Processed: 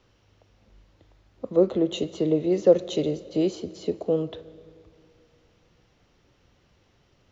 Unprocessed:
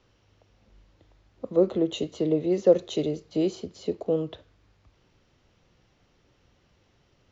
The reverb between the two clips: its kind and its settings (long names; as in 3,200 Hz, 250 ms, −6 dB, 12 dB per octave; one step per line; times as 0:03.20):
comb and all-pass reverb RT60 2.7 s, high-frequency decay 0.8×, pre-delay 95 ms, DRR 18.5 dB
level +1.5 dB